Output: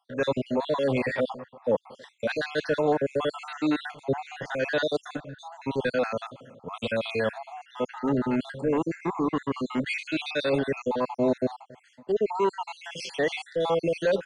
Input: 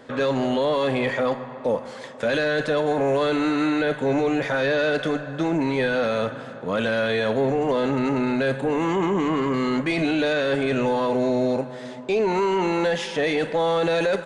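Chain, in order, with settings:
time-frequency cells dropped at random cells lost 54%
multiband upward and downward expander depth 70%
level −1.5 dB

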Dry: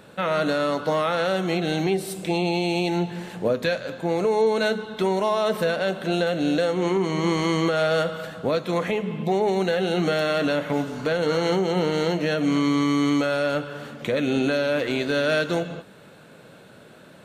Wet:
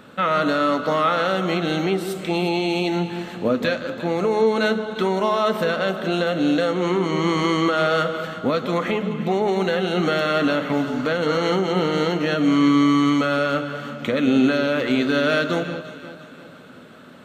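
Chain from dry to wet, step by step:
thirty-one-band graphic EQ 250 Hz +10 dB, 1,250 Hz +9 dB, 2,000 Hz +3 dB, 3,150 Hz +4 dB, 10,000 Hz −8 dB
delay that swaps between a low-pass and a high-pass 175 ms, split 1,300 Hz, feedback 67%, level −10.5 dB

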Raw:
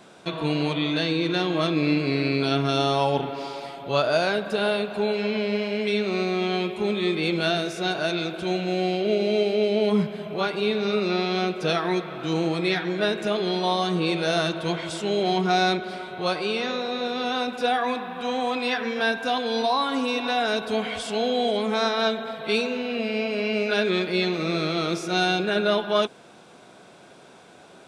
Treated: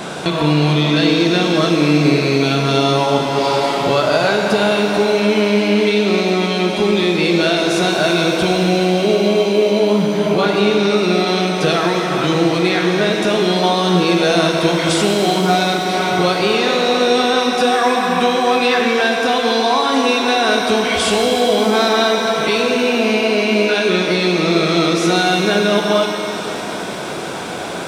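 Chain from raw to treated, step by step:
downward compressor 6 to 1, threshold −37 dBFS, peak gain reduction 18.5 dB
boost into a limiter +26.5 dB
reverb with rising layers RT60 3.2 s, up +7 semitones, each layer −8 dB, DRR 2 dB
level −4.5 dB

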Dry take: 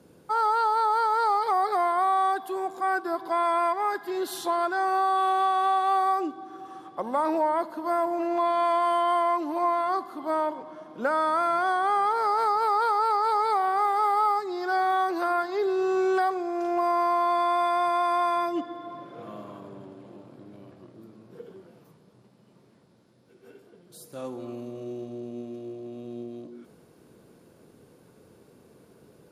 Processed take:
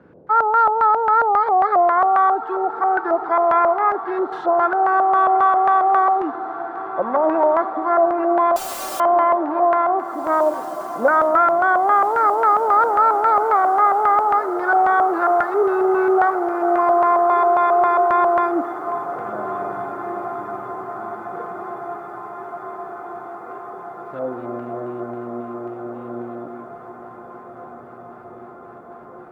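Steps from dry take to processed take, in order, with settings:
auto-filter low-pass square 3.7 Hz 650–1,600 Hz
0:08.56–0:09.00: wrap-around overflow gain 32.5 dB
feedback delay with all-pass diffusion 1,931 ms, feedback 70%, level −14 dB
level +5 dB

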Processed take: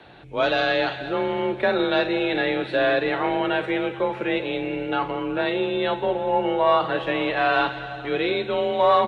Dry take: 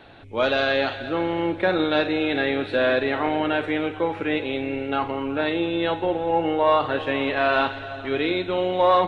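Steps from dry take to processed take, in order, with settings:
single-tap delay 191 ms −20.5 dB
frequency shifter +33 Hz

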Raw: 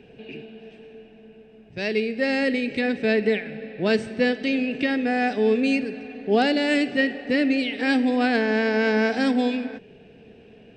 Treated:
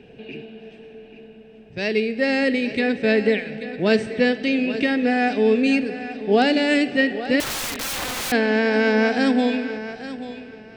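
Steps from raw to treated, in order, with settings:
pitch vibrato 2.8 Hz 7.2 cents
feedback echo with a high-pass in the loop 835 ms, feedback 22%, high-pass 170 Hz, level −12.5 dB
0:07.40–0:08.32: wrap-around overflow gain 25 dB
level +2.5 dB

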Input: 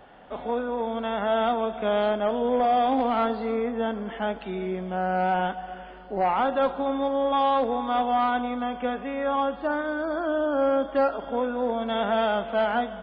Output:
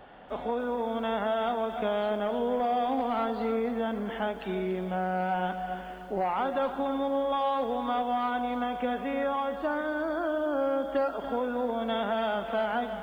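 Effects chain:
downward compressor 4 to 1, threshold −26 dBFS, peak gain reduction 6.5 dB
feedback echo at a low word length 288 ms, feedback 35%, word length 9 bits, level −11.5 dB

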